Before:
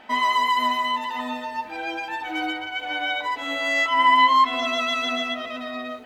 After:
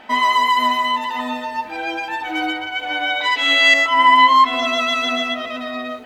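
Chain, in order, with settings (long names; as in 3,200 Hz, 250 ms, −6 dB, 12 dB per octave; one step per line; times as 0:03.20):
0:03.21–0:03.74: meter weighting curve D
level +5 dB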